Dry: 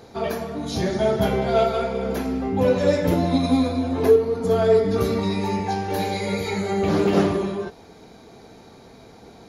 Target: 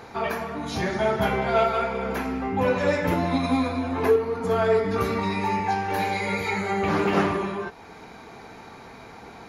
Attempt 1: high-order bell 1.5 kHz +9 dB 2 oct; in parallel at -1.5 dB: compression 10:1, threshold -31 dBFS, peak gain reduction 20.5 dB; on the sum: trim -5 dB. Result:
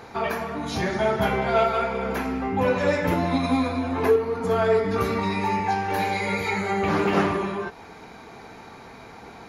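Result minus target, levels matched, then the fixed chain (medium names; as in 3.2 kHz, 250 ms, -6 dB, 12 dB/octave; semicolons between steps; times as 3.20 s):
compression: peak gain reduction -6.5 dB
high-order bell 1.5 kHz +9 dB 2 oct; in parallel at -1.5 dB: compression 10:1, threshold -38 dBFS, peak gain reduction 27 dB; on the sum: trim -5 dB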